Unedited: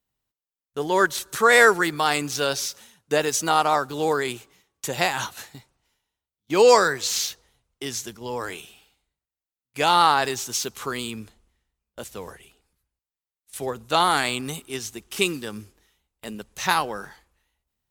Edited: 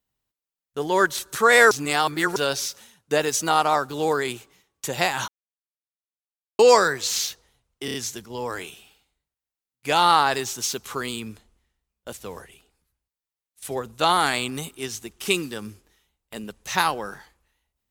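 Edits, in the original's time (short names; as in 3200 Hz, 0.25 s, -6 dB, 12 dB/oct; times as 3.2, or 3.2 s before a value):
1.71–2.36 reverse
5.28–6.59 mute
7.85 stutter 0.03 s, 4 plays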